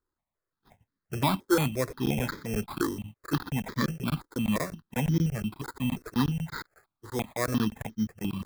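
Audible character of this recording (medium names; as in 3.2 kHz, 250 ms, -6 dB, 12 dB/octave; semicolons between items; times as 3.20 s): aliases and images of a low sample rate 2.9 kHz, jitter 0%; notches that jump at a steady rate 5.7 Hz 680–2700 Hz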